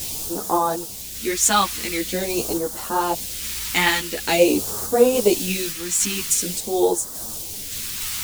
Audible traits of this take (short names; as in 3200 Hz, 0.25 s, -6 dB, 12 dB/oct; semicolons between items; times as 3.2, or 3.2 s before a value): a quantiser's noise floor 6-bit, dither triangular; phasing stages 2, 0.46 Hz, lowest notch 550–2300 Hz; random-step tremolo; a shimmering, thickened sound